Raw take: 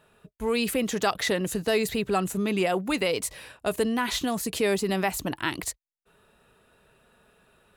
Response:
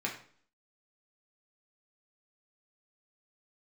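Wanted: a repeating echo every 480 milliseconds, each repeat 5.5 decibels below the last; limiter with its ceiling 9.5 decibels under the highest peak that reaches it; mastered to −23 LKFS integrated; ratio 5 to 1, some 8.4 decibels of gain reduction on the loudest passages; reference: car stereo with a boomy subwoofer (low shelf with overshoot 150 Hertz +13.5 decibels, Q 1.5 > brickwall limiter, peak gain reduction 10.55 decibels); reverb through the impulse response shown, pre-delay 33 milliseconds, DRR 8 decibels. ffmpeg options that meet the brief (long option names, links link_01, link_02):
-filter_complex "[0:a]acompressor=threshold=-30dB:ratio=5,alimiter=level_in=1.5dB:limit=-24dB:level=0:latency=1,volume=-1.5dB,aecho=1:1:480|960|1440|1920|2400|2880|3360:0.531|0.281|0.149|0.079|0.0419|0.0222|0.0118,asplit=2[link_01][link_02];[1:a]atrim=start_sample=2205,adelay=33[link_03];[link_02][link_03]afir=irnorm=-1:irlink=0,volume=-12.5dB[link_04];[link_01][link_04]amix=inputs=2:normalize=0,lowshelf=frequency=150:width_type=q:width=1.5:gain=13.5,volume=15.5dB,alimiter=limit=-14dB:level=0:latency=1"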